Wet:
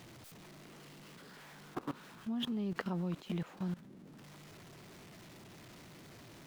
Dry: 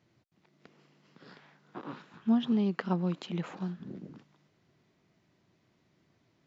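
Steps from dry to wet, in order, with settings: zero-crossing step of -44 dBFS; level quantiser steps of 19 dB; gain +2.5 dB

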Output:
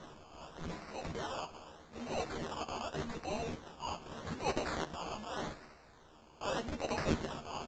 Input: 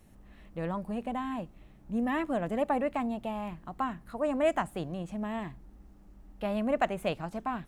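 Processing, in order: elliptic high-pass 2700 Hz, stop band 40 dB; in parallel at +2 dB: compressor, threshold -60 dBFS, peak gain reduction 20.5 dB; on the sum: transient shaper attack -9 dB, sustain +7 dB; decimation with a swept rate 18×, swing 60% 0.83 Hz; early reflections 13 ms -4.5 dB, 68 ms -17 dB; gain +13 dB; µ-law 128 kbps 16000 Hz

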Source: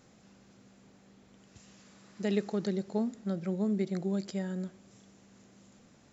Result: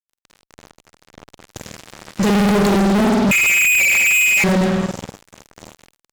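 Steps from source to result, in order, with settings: spring tank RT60 1.2 s, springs 50 ms, chirp 60 ms, DRR 0 dB; 3.31–4.44 inverted band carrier 2700 Hz; fuzz box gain 44 dB, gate -49 dBFS

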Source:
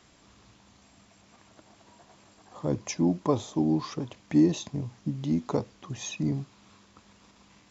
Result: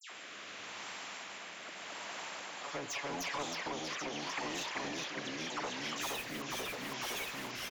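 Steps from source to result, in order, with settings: HPF 920 Hz 12 dB/oct; dispersion lows, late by 0.1 s, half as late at 2500 Hz; 6.01–6.42 modulation noise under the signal 12 dB; echoes that change speed 0.133 s, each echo -1 st, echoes 3; echo 1.089 s -12 dB; rotary speaker horn 0.8 Hz; compressor 3:1, threshold -43 dBFS, peak gain reduction 10.5 dB; 2.63–3.43 comb 7.1 ms, depth 87%; soft clip -33 dBFS, distortion -24 dB; resonant high shelf 3400 Hz -10.5 dB, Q 1.5; spectral compressor 2:1; gain +7.5 dB

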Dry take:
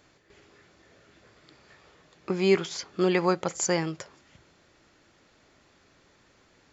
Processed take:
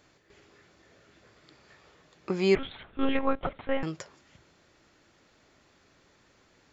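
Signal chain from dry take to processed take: 2.55–3.83 monotone LPC vocoder at 8 kHz 270 Hz; gain -1.5 dB

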